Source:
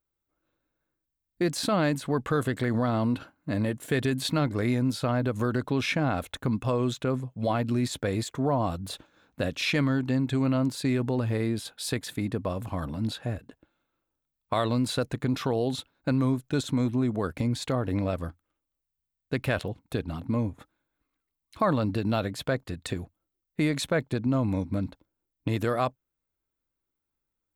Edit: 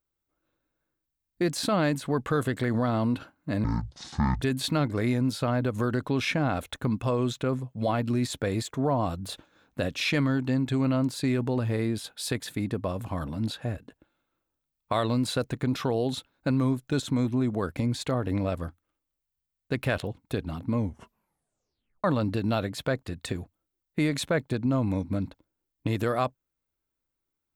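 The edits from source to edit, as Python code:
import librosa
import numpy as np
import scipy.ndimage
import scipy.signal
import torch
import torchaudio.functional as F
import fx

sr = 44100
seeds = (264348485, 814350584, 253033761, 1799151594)

y = fx.edit(x, sr, fx.speed_span(start_s=3.64, length_s=0.39, speed=0.5),
    fx.tape_stop(start_s=20.39, length_s=1.26), tone=tone)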